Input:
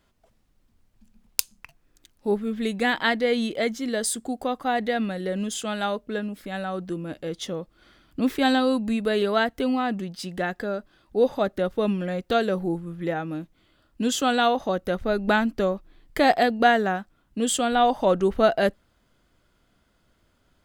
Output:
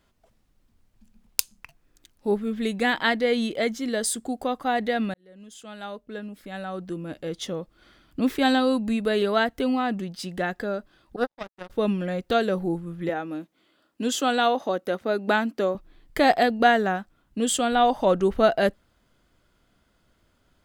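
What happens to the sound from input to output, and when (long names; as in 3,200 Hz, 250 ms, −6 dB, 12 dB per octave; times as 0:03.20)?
0:05.14–0:07.38: fade in
0:11.16–0:11.70: power curve on the samples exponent 3
0:13.09–0:15.75: Chebyshev high-pass filter 280 Hz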